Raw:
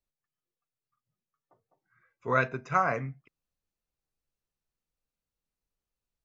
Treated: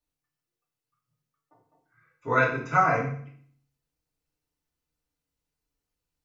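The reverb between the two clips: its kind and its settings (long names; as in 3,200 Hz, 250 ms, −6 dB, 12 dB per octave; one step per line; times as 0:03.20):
feedback delay network reverb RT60 0.55 s, low-frequency decay 1.35×, high-frequency decay 0.95×, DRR −5 dB
level −2 dB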